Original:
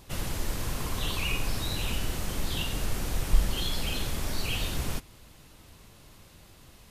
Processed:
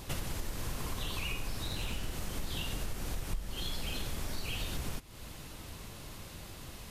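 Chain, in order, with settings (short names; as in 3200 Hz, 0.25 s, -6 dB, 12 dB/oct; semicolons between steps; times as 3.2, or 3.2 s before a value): compressor 6:1, threshold -40 dBFS, peak gain reduction 24 dB; 1.63–2.11 Doppler distortion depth 0.15 ms; gain +6.5 dB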